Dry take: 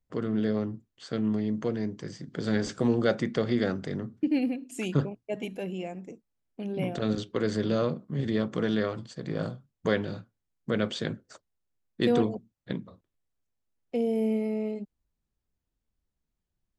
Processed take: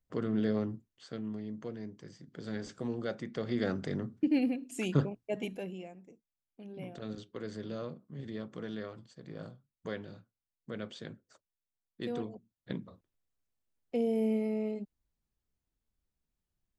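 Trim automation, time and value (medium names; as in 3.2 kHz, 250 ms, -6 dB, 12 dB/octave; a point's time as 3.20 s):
0.74 s -3 dB
1.26 s -11.5 dB
3.26 s -11.5 dB
3.79 s -2 dB
5.48 s -2 dB
5.98 s -13 dB
12.31 s -13 dB
12.83 s -3 dB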